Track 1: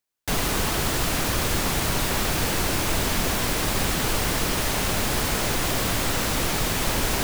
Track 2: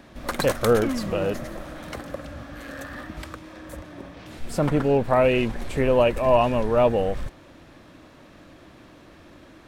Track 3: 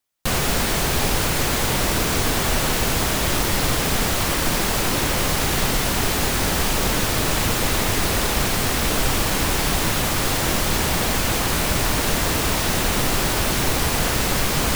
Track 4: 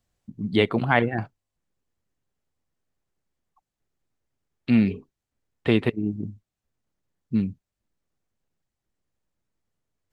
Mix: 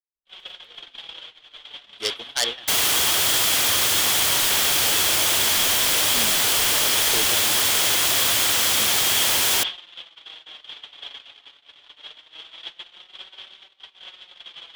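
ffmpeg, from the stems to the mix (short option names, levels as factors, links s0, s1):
-filter_complex "[0:a]highpass=f=89:w=0.5412,highpass=f=89:w=1.3066,highshelf=f=2100:g=10.5,adelay=2400,volume=0.841[s0];[1:a]acompressor=threshold=0.00794:ratio=1.5,volume=0.266[s1];[2:a]lowpass=f=3300:t=q:w=12,flanger=delay=5.2:depth=1.9:regen=28:speed=0.22:shape=sinusoidal,highpass=f=480:p=1,volume=0.422[s2];[3:a]equalizer=f=125:t=o:w=1:g=-5,equalizer=f=500:t=o:w=1:g=8,equalizer=f=2000:t=o:w=1:g=11,equalizer=f=4000:t=o:w=1:g=-10,acontrast=85,aexciter=amount=15:drive=8.4:freq=3700,adelay=1450,volume=0.126[s3];[s0][s1][s2][s3]amix=inputs=4:normalize=0,agate=range=0.00282:threshold=0.0631:ratio=16:detection=peak,equalizer=f=170:t=o:w=1.8:g=-11.5"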